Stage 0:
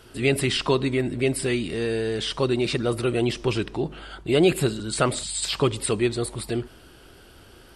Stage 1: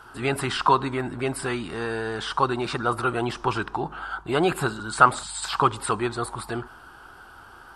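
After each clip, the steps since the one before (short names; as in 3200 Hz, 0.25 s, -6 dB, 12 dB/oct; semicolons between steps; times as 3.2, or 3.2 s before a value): band shelf 1100 Hz +16 dB 1.3 oct; gain -4.5 dB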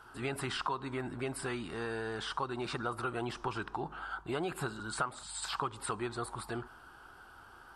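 compressor 5:1, threshold -24 dBFS, peak gain reduction 13.5 dB; gain -8 dB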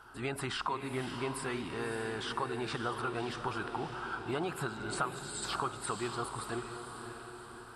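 diffused feedback echo 0.586 s, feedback 50%, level -7 dB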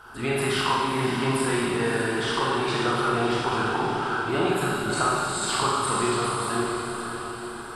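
Schroeder reverb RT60 1.6 s, combs from 30 ms, DRR -4.5 dB; gain +6.5 dB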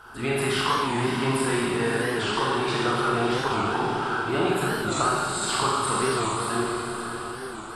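record warp 45 rpm, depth 160 cents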